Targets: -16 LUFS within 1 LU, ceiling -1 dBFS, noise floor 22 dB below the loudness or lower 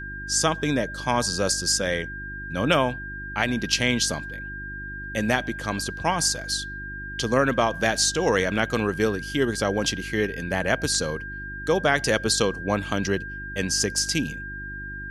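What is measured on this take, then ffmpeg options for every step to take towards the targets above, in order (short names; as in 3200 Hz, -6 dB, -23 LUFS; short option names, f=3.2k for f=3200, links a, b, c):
hum 50 Hz; harmonics up to 350 Hz; hum level -36 dBFS; steady tone 1600 Hz; tone level -34 dBFS; loudness -24.5 LUFS; peak -6.5 dBFS; loudness target -16.0 LUFS
-> -af "bandreject=f=50:t=h:w=4,bandreject=f=100:t=h:w=4,bandreject=f=150:t=h:w=4,bandreject=f=200:t=h:w=4,bandreject=f=250:t=h:w=4,bandreject=f=300:t=h:w=4,bandreject=f=350:t=h:w=4"
-af "bandreject=f=1.6k:w=30"
-af "volume=8.5dB,alimiter=limit=-1dB:level=0:latency=1"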